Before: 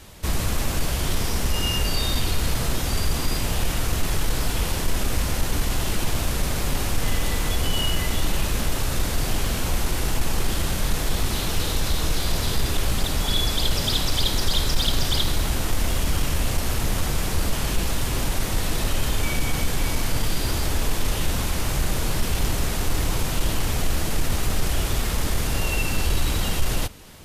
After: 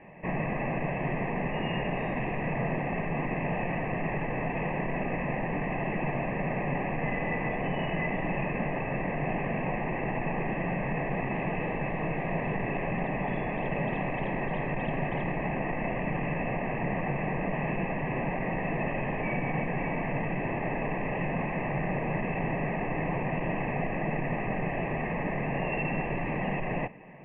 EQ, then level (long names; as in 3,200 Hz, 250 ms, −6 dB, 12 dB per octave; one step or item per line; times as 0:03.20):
Butterworth band-reject 1,400 Hz, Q 3.7
Chebyshev low-pass with heavy ripple 2,700 Hz, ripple 9 dB
low shelf with overshoot 110 Hz −11.5 dB, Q 3
+3.5 dB